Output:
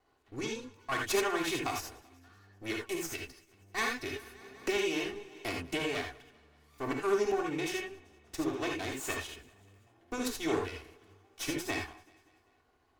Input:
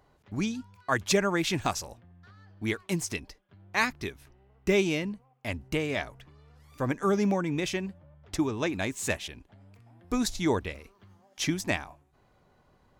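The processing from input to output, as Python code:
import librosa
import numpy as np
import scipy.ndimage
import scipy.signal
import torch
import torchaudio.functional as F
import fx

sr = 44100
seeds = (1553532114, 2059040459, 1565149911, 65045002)

y = fx.lower_of_two(x, sr, delay_ms=2.7)
y = fx.low_shelf(y, sr, hz=190.0, db=-8.0)
y = fx.echo_feedback(y, sr, ms=193, feedback_pct=55, wet_db=-24.0)
y = fx.rev_gated(y, sr, seeds[0], gate_ms=100, shape='rising', drr_db=1.0)
y = fx.band_squash(y, sr, depth_pct=70, at=(3.78, 6.01))
y = y * librosa.db_to_amplitude(-5.5)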